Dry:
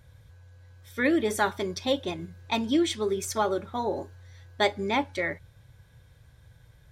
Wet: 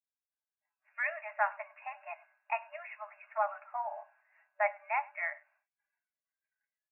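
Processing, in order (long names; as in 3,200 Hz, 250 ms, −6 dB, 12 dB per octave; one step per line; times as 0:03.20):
far-end echo of a speakerphone 100 ms, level −22 dB
brick-wall band-pass 590–2,800 Hz
downward expander −58 dBFS
automatic gain control gain up to 3 dB
noise reduction from a noise print of the clip's start 18 dB
level −7 dB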